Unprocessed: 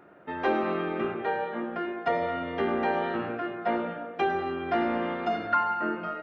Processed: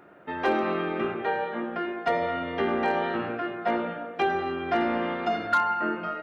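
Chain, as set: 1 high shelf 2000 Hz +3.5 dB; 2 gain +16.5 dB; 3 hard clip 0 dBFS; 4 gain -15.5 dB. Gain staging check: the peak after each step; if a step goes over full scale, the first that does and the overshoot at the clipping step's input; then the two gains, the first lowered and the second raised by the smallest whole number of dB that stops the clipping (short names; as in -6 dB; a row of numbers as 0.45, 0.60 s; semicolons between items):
-12.5, +4.0, 0.0, -15.5 dBFS; step 2, 4.0 dB; step 2 +12.5 dB, step 4 -11.5 dB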